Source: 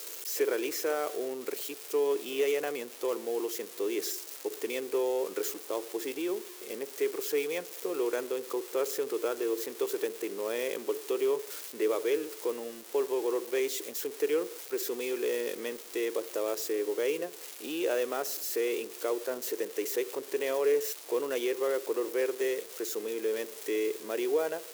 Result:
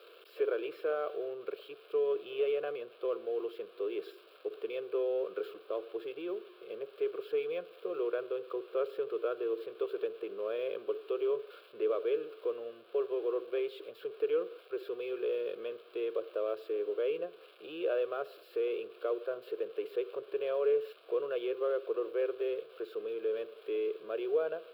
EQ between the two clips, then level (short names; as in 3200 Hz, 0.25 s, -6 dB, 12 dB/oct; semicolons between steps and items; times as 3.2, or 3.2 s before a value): air absorption 380 m; fixed phaser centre 1300 Hz, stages 8; 0.0 dB